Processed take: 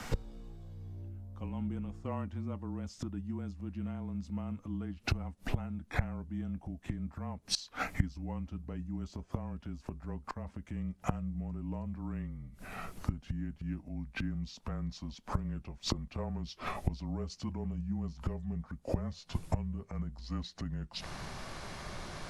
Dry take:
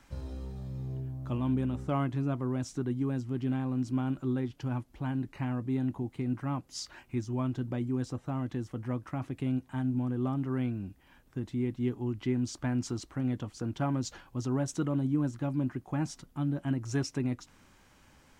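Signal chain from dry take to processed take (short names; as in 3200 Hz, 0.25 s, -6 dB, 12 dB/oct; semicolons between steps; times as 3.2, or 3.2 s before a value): speed glide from 93% -> 72%; flipped gate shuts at -34 dBFS, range -25 dB; frequency shift -26 Hz; gain +17.5 dB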